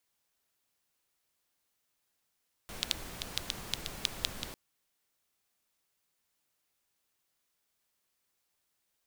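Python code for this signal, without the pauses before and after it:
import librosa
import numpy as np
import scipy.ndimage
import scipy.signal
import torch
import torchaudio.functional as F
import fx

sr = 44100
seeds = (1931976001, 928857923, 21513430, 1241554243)

y = fx.rain(sr, seeds[0], length_s=1.85, drops_per_s=5.3, hz=3600.0, bed_db=-3)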